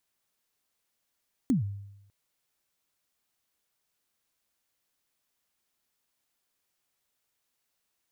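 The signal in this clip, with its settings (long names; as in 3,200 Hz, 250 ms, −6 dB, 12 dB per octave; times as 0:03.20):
synth kick length 0.60 s, from 290 Hz, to 100 Hz, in 131 ms, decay 0.88 s, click on, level −19 dB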